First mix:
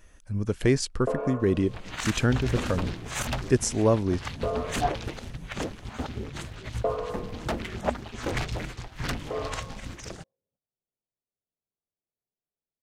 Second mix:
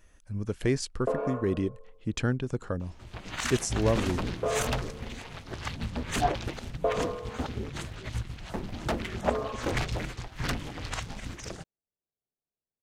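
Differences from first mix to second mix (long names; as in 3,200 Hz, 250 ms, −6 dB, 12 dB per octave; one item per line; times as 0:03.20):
speech −4.5 dB
second sound: entry +1.40 s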